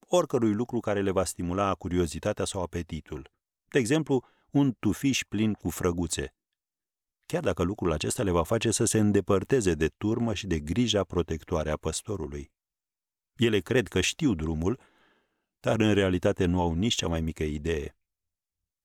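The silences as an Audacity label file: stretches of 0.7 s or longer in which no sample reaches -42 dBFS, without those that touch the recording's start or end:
6.270000	7.300000	silence
12.440000	13.390000	silence
14.760000	15.640000	silence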